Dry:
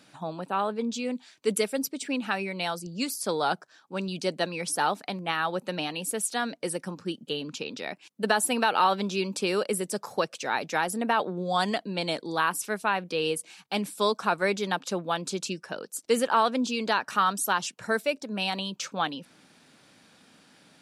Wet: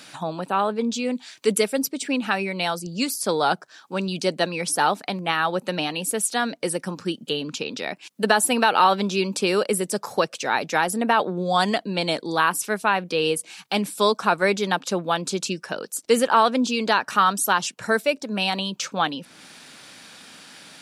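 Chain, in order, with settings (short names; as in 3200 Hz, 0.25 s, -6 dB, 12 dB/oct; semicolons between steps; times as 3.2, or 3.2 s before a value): mismatched tape noise reduction encoder only; gain +5.5 dB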